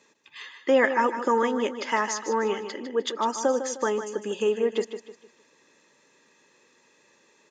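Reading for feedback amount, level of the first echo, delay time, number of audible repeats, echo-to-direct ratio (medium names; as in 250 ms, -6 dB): 36%, -10.0 dB, 153 ms, 3, -9.5 dB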